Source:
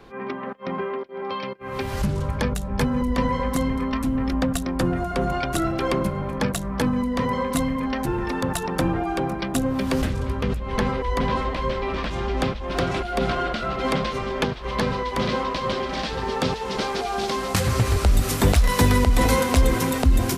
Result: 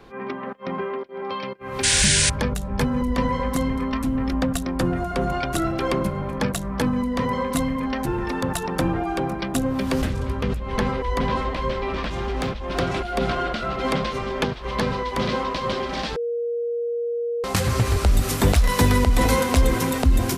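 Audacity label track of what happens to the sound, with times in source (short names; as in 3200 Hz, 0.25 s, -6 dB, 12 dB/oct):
1.830000	2.300000	painted sound noise 1400–9800 Hz -19 dBFS
12.120000	12.560000	overloaded stage gain 21 dB
16.160000	17.440000	bleep 472 Hz -22.5 dBFS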